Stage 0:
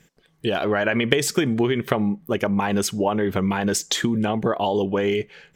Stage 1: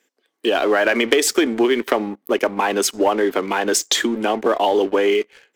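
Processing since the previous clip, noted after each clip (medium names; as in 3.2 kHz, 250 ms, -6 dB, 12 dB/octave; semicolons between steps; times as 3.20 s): steep high-pass 250 Hz 48 dB/octave; waveshaping leveller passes 2; trim -2 dB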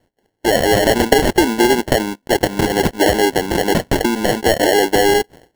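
sample-and-hold 36×; trim +3.5 dB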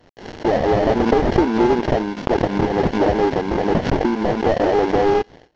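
CVSD coder 32 kbps; swell ahead of each attack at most 86 dB/s; trim -1 dB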